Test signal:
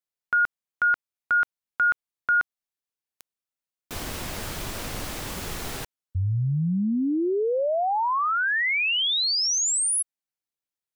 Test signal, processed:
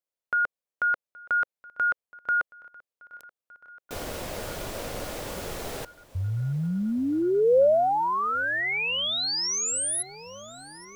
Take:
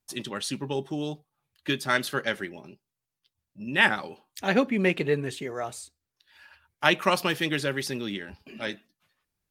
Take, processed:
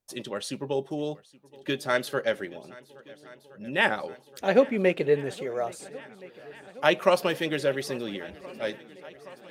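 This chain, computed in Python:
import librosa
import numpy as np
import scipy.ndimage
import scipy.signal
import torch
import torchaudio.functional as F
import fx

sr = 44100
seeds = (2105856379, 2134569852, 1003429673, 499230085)

y = fx.peak_eq(x, sr, hz=540.0, db=10.5, octaves=0.92)
y = fx.echo_swing(y, sr, ms=1371, ratio=1.5, feedback_pct=70, wet_db=-22.5)
y = F.gain(torch.from_numpy(y), -4.0).numpy()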